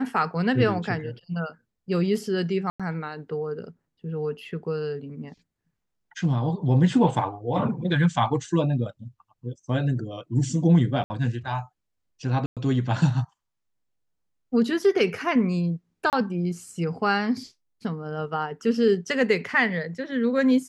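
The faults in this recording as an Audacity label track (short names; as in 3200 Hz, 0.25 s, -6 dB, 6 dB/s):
2.700000	2.800000	gap 96 ms
11.040000	11.100000	gap 60 ms
12.460000	12.570000	gap 0.107 s
16.100000	16.130000	gap 28 ms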